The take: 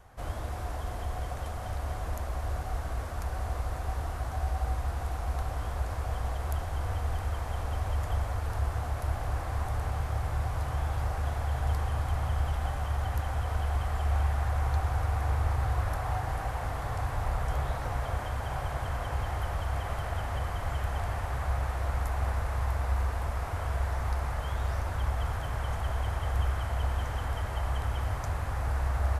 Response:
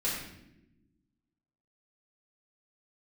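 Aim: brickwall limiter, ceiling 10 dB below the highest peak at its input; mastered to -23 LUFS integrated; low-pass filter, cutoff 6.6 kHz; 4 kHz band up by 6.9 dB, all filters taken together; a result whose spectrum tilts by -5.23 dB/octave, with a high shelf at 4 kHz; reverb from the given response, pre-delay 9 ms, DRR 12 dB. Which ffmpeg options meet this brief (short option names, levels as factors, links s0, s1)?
-filter_complex "[0:a]lowpass=6600,highshelf=f=4000:g=4,equalizer=f=4000:t=o:g=7.5,alimiter=level_in=1.41:limit=0.0631:level=0:latency=1,volume=0.708,asplit=2[s0][s1];[1:a]atrim=start_sample=2205,adelay=9[s2];[s1][s2]afir=irnorm=-1:irlink=0,volume=0.119[s3];[s0][s3]amix=inputs=2:normalize=0,volume=4.73"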